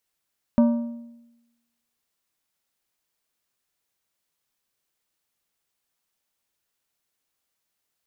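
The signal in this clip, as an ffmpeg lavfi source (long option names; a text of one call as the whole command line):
ffmpeg -f lavfi -i "aevalsrc='0.251*pow(10,-3*t/1)*sin(2*PI*235*t)+0.0891*pow(10,-3*t/0.76)*sin(2*PI*587.5*t)+0.0316*pow(10,-3*t/0.66)*sin(2*PI*940*t)+0.0112*pow(10,-3*t/0.617)*sin(2*PI*1175*t)+0.00398*pow(10,-3*t/0.57)*sin(2*PI*1527.5*t)':duration=1.55:sample_rate=44100" out.wav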